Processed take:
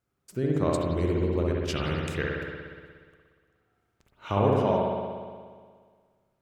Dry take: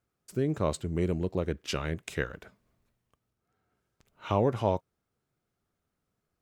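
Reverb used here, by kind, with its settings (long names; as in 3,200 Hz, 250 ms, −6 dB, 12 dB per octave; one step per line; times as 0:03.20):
spring reverb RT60 1.8 s, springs 59 ms, chirp 30 ms, DRR −3 dB
level −1 dB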